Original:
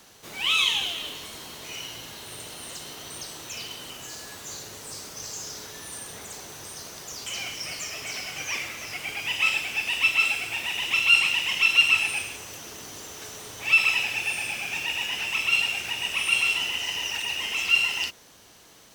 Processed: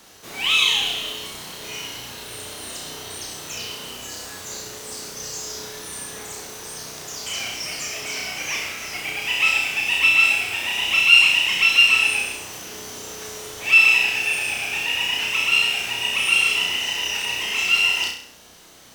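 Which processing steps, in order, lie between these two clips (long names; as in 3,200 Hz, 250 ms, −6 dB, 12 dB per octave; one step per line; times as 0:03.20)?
mains-hum notches 50/100/150 Hz
on a send: flutter between parallel walls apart 5.6 metres, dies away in 0.53 s
on the sum: level +2.5 dB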